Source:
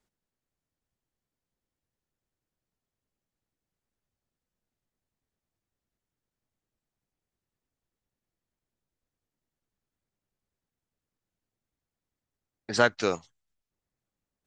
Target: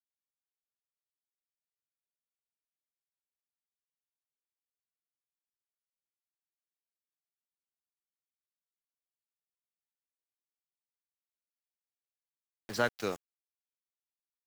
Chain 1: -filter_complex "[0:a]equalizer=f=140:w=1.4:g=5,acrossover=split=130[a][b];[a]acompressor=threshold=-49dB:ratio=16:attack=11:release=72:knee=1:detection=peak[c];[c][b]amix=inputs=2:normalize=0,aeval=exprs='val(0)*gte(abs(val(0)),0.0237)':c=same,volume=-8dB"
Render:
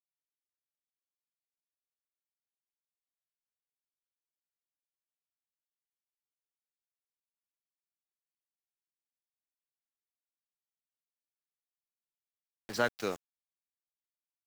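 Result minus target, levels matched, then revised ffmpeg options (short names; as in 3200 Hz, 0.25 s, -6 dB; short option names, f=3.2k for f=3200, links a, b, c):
compressor: peak gain reduction +8 dB
-filter_complex "[0:a]equalizer=f=140:w=1.4:g=5,acrossover=split=130[a][b];[a]acompressor=threshold=-40.5dB:ratio=16:attack=11:release=72:knee=1:detection=peak[c];[c][b]amix=inputs=2:normalize=0,aeval=exprs='val(0)*gte(abs(val(0)),0.0237)':c=same,volume=-8dB"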